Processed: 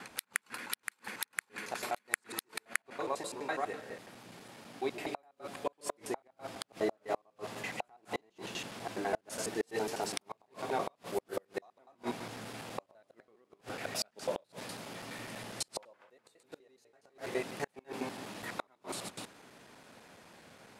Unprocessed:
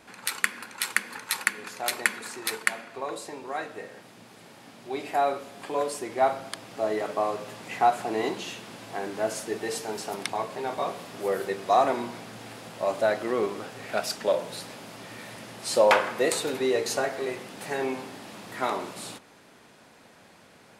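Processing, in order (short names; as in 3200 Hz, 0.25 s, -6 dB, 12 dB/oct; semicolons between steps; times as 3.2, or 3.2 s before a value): slices in reverse order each 83 ms, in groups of 2; flipped gate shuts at -19 dBFS, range -37 dB; gain -2 dB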